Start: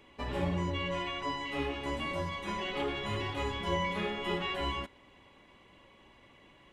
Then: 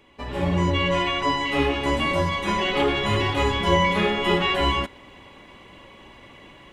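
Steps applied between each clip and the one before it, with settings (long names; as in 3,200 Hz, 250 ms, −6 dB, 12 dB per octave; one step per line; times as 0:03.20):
automatic gain control gain up to 10 dB
level +2.5 dB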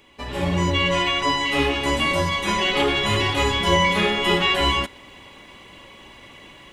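high-shelf EQ 2,800 Hz +9 dB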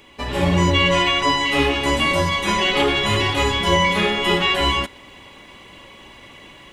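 speech leveller within 5 dB 2 s
level +2 dB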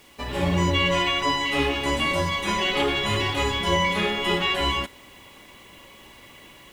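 bit reduction 8 bits
level −5 dB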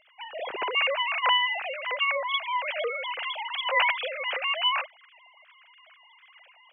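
three sine waves on the formant tracks
level −4.5 dB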